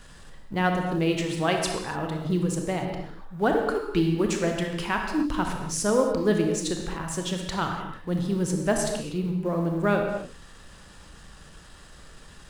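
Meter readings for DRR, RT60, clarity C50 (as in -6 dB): 2.5 dB, not exponential, 3.5 dB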